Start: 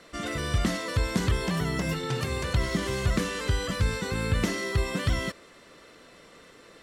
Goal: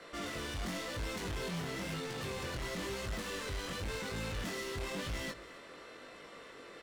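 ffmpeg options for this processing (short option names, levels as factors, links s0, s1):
-filter_complex "[0:a]asplit=2[s0][s1];[s1]aeval=exprs='0.0398*(abs(mod(val(0)/0.0398+3,4)-2)-1)':c=same,volume=0.668[s2];[s0][s2]amix=inputs=2:normalize=0,bass=f=250:g=-7,treble=f=4000:g=-6,volume=50.1,asoftclip=hard,volume=0.02,acrossover=split=450|3000[s3][s4][s5];[s4]acompressor=threshold=0.0112:ratio=6[s6];[s3][s6][s5]amix=inputs=3:normalize=0,flanger=delay=18.5:depth=5:speed=0.96,asplit=2[s7][s8];[s8]aecho=0:1:266:0.0944[s9];[s7][s9]amix=inputs=2:normalize=0"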